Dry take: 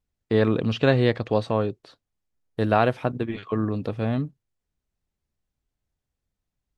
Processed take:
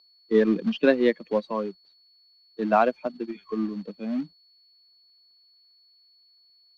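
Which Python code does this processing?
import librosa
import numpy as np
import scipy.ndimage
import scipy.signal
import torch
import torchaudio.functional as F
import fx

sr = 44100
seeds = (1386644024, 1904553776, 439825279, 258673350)

p1 = fx.bin_expand(x, sr, power=2.0)
p2 = p1 + 10.0 ** (-54.0 / 20.0) * np.sin(2.0 * np.pi * 4400.0 * np.arange(len(p1)) / sr)
p3 = scipy.signal.sosfilt(scipy.signal.butter(12, 180.0, 'highpass', fs=sr, output='sos'), p2)
p4 = fx.quant_companded(p3, sr, bits=4)
p5 = p3 + F.gain(torch.from_numpy(p4), -5.0).numpy()
y = fx.air_absorb(p5, sr, metres=240.0)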